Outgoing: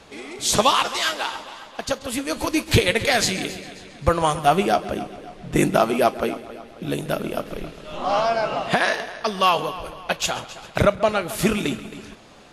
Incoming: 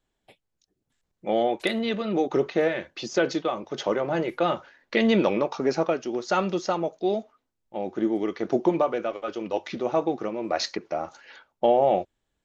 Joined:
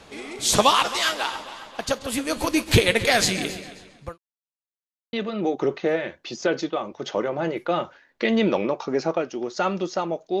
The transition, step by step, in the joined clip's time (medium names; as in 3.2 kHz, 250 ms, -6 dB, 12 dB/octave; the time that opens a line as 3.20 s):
outgoing
3.54–4.18 s: fade out linear
4.18–5.13 s: mute
5.13 s: go over to incoming from 1.85 s